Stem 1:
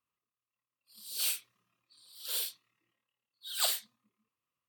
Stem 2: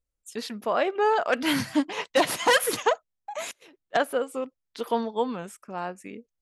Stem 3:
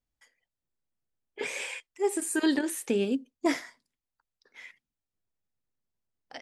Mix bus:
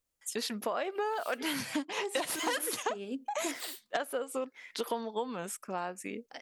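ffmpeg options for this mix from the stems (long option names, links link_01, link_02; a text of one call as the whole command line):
ffmpeg -i stem1.wav -i stem2.wav -i stem3.wav -filter_complex "[0:a]volume=-11dB[link_01];[1:a]highshelf=frequency=6100:gain=6.5,volume=2.5dB[link_02];[2:a]volume=-3dB[link_03];[link_01][link_02][link_03]amix=inputs=3:normalize=0,lowshelf=frequency=130:gain=-11,acompressor=threshold=-31dB:ratio=6" out.wav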